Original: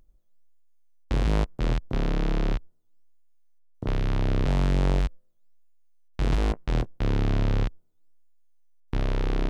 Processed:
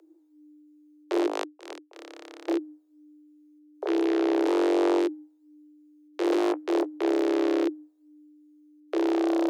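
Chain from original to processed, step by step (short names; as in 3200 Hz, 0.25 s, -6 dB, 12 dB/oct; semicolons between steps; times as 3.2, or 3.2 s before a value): one-sided fold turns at -23 dBFS; 1.26–2.48 power-law curve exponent 3; frequency shift +300 Hz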